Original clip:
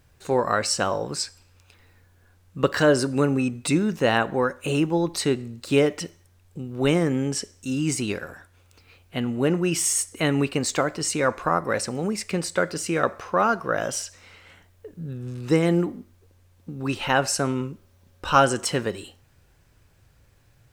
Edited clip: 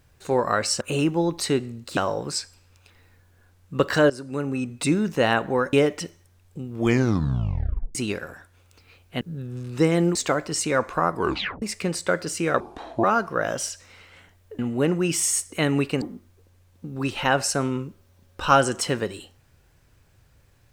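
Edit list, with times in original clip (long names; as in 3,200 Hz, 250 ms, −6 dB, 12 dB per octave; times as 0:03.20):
0:02.94–0:03.75: fade in, from −16.5 dB
0:04.57–0:05.73: move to 0:00.81
0:06.68: tape stop 1.27 s
0:09.21–0:10.64: swap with 0:14.92–0:15.86
0:11.62: tape stop 0.49 s
0:13.09–0:13.37: play speed 64%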